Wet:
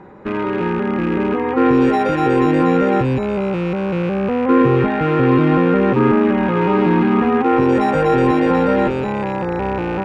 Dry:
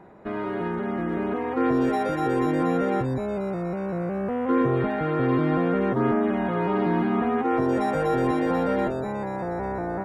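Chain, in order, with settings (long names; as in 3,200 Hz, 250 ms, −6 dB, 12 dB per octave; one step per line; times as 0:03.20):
loose part that buzzes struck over −33 dBFS, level −32 dBFS
Butterworth band-reject 670 Hz, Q 5.4
high-frequency loss of the air 58 metres
level +9 dB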